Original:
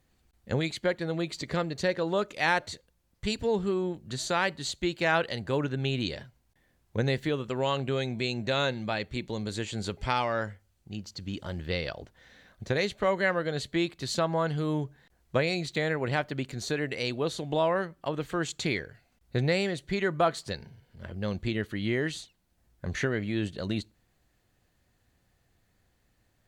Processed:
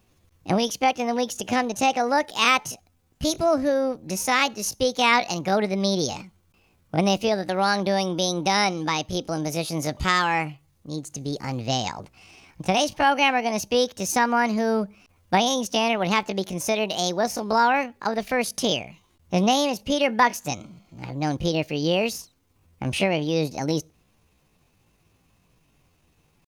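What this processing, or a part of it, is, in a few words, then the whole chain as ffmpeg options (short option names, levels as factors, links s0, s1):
chipmunk voice: -af "asetrate=64194,aresample=44100,atempo=0.686977,volume=2.11"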